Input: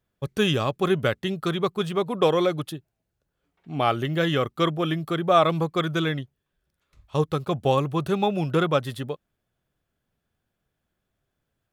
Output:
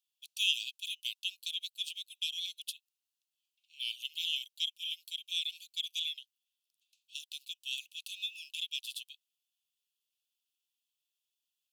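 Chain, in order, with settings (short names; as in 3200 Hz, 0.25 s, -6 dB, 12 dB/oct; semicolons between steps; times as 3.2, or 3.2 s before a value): steep high-pass 2600 Hz 96 dB/oct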